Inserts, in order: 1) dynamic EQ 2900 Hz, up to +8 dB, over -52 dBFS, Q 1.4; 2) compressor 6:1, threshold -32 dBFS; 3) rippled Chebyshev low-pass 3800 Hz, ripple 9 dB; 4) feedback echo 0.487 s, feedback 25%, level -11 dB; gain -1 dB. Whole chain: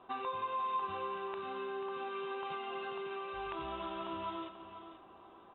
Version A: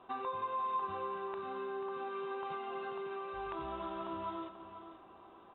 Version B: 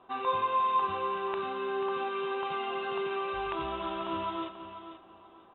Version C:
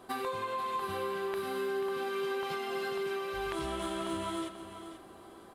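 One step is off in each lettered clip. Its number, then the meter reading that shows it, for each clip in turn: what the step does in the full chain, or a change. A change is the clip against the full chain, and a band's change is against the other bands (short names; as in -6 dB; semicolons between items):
1, 4 kHz band -6.5 dB; 2, momentary loudness spread change -1 LU; 3, 1 kHz band -6.5 dB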